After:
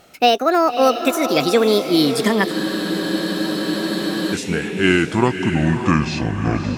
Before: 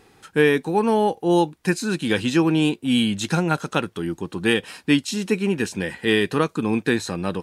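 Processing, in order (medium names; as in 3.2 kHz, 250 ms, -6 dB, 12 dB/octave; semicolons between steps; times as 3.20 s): gliding tape speed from 166% -> 53%; echo that smears into a reverb 593 ms, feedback 42%, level -8 dB; spectral freeze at 2.53 s, 1.81 s; trim +3.5 dB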